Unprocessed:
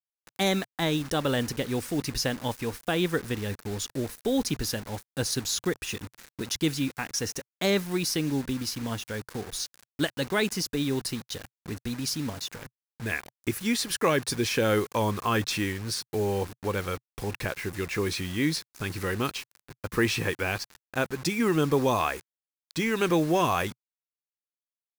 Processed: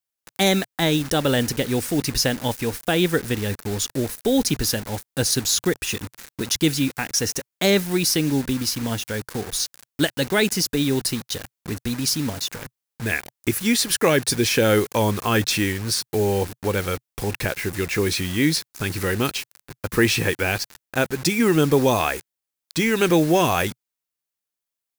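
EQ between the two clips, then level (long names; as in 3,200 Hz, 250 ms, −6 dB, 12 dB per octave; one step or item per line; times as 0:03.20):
high-shelf EQ 7,300 Hz +5 dB
dynamic equaliser 1,100 Hz, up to −6 dB, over −48 dBFS, Q 3.7
+6.5 dB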